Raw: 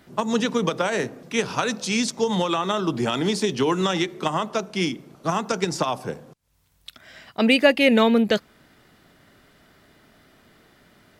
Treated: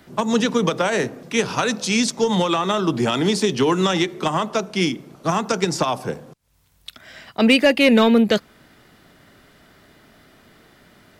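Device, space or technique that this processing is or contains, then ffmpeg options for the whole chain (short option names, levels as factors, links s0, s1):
one-band saturation: -filter_complex "[0:a]acrossover=split=310|3500[s0][s1][s2];[s1]asoftclip=type=tanh:threshold=0.188[s3];[s0][s3][s2]amix=inputs=3:normalize=0,volume=1.58"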